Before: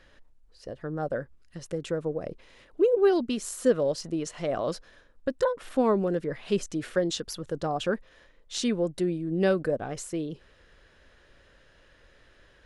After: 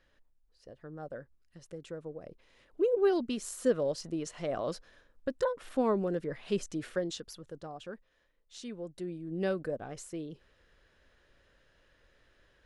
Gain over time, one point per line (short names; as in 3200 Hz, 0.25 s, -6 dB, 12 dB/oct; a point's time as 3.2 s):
2.29 s -12 dB
2.93 s -5 dB
6.81 s -5 dB
7.83 s -16 dB
8.64 s -16 dB
9.37 s -8 dB